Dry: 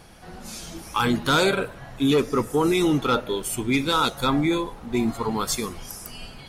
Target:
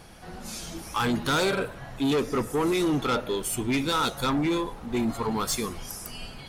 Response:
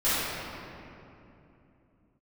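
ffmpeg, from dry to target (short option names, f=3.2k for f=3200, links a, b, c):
-af "asoftclip=type=tanh:threshold=-20.5dB"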